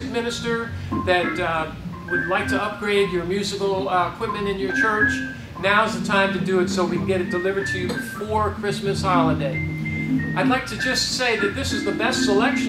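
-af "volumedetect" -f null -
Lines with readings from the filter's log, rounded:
mean_volume: -22.0 dB
max_volume: -4.2 dB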